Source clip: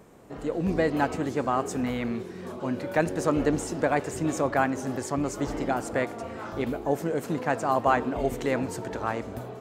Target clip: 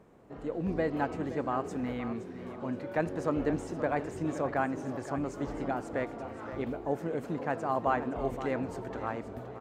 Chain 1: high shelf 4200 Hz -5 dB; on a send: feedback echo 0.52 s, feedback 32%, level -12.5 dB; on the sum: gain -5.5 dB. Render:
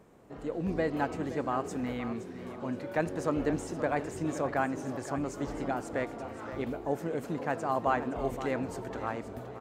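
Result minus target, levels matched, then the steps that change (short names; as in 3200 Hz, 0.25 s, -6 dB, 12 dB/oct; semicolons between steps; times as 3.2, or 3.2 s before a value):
8000 Hz band +6.0 dB
change: high shelf 4200 Hz -13 dB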